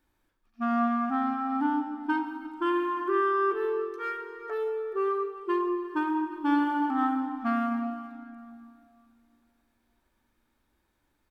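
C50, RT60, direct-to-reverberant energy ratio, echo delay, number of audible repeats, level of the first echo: 7.0 dB, 2.6 s, 7.0 dB, 351 ms, 1, −20.0 dB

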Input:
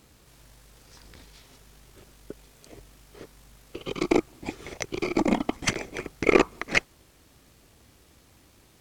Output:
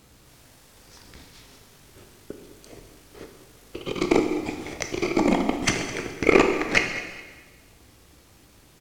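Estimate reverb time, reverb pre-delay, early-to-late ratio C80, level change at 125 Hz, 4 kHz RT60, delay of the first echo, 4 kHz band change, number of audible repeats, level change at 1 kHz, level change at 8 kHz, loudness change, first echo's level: 1.4 s, 7 ms, 7.5 dB, +3.5 dB, 1.3 s, 210 ms, +3.5 dB, 2, +3.5 dB, +3.5 dB, +3.0 dB, −16.5 dB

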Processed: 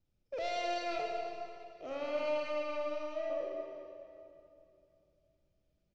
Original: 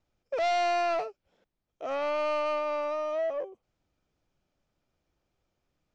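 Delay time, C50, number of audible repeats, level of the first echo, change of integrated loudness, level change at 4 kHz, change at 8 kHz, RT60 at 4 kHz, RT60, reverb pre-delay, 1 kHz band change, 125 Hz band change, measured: 230 ms, 1.0 dB, 1, −12.5 dB, −8.5 dB, −4.5 dB, can't be measured, 2.2 s, 2.8 s, 25 ms, −9.5 dB, can't be measured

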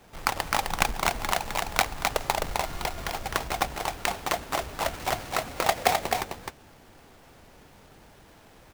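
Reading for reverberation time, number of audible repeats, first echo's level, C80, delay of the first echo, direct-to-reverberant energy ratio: no reverb audible, 1, −4.0 dB, no reverb audible, 259 ms, no reverb audible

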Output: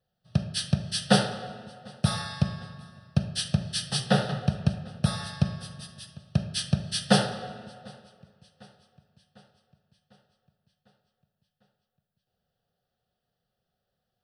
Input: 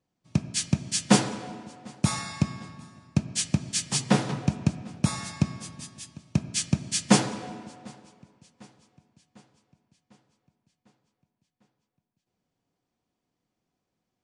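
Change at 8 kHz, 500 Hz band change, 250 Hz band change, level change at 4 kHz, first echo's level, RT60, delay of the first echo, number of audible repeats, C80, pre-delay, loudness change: −7.5 dB, +2.0 dB, −2.5 dB, +2.0 dB, no echo audible, 0.50 s, no echo audible, no echo audible, 15.5 dB, 37 ms, −1.0 dB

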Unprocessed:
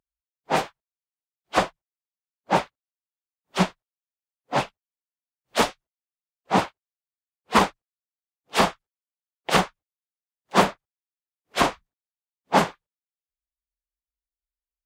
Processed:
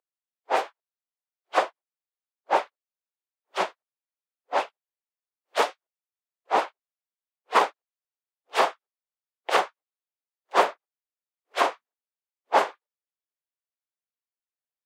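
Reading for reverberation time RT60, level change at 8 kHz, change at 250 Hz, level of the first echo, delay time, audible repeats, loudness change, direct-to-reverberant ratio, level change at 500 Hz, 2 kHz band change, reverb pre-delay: no reverb audible, −7.5 dB, −14.0 dB, no echo audible, no echo audible, no echo audible, −2.0 dB, no reverb audible, −1.0 dB, −2.5 dB, no reverb audible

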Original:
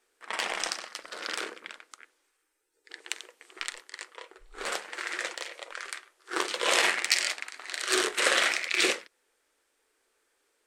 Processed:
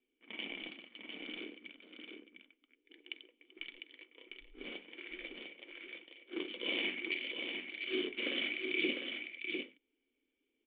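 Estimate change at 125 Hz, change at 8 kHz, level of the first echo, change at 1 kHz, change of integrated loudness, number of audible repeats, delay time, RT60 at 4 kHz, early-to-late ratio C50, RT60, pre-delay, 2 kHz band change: can't be measured, below −40 dB, −5.5 dB, −24.0 dB, −11.0 dB, 1, 702 ms, no reverb audible, no reverb audible, no reverb audible, no reverb audible, −10.0 dB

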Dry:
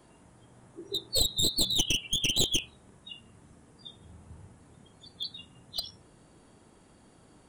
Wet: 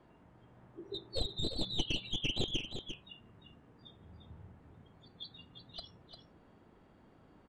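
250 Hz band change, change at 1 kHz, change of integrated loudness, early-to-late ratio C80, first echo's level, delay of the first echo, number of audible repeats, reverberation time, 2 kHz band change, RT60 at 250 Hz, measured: −3.5 dB, −3.5 dB, −10.5 dB, no reverb audible, −8.5 dB, 349 ms, 1, no reverb audible, −6.5 dB, no reverb audible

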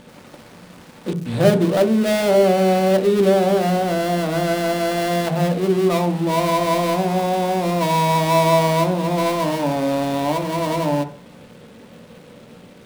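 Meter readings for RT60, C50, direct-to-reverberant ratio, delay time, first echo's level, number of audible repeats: 0.45 s, 13.0 dB, 6.0 dB, no echo audible, no echo audible, no echo audible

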